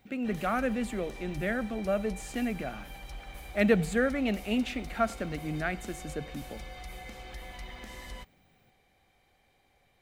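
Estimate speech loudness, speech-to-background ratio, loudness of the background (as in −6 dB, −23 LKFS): −31.5 LKFS, 13.5 dB, −45.0 LKFS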